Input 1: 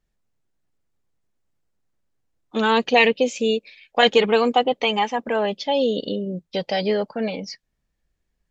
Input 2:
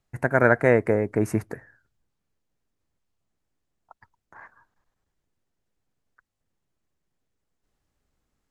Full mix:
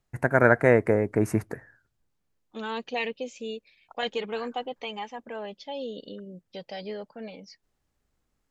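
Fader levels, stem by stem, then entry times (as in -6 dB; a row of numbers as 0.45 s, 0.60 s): -14.5 dB, -0.5 dB; 0.00 s, 0.00 s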